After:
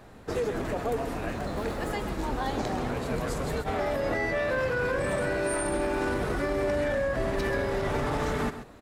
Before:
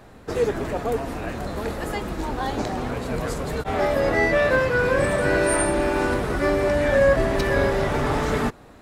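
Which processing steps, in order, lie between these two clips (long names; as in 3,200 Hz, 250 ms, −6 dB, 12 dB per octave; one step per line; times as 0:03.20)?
0:01.36–0:01.91: running median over 3 samples
brickwall limiter −17.5 dBFS, peak gain reduction 10.5 dB
on a send: single-tap delay 133 ms −11 dB
on the sum: level −3 dB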